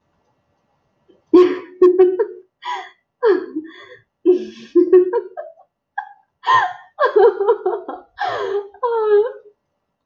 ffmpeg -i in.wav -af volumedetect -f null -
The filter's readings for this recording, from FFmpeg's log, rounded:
mean_volume: -18.2 dB
max_volume: -2.2 dB